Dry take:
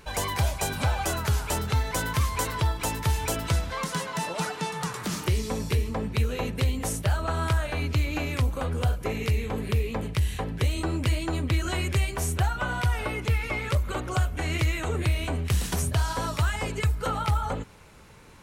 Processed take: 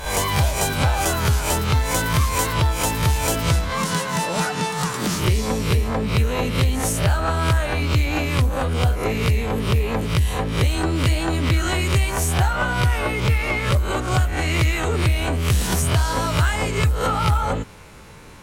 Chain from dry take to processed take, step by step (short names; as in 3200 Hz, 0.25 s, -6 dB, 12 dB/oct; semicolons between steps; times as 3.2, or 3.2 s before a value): spectral swells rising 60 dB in 0.42 s; in parallel at -7 dB: hard clip -27.5 dBFS, distortion -7 dB; on the sum: gain +3.5 dB